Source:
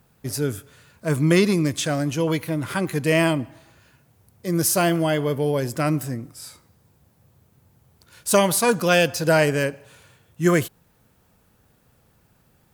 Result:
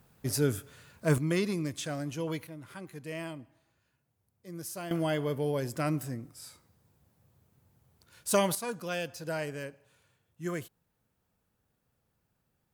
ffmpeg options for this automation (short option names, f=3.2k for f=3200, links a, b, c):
-af "asetnsamples=n=441:p=0,asendcmd='1.18 volume volume -12dB;2.47 volume volume -20dB;4.91 volume volume -8.5dB;8.55 volume volume -17dB',volume=-3dB"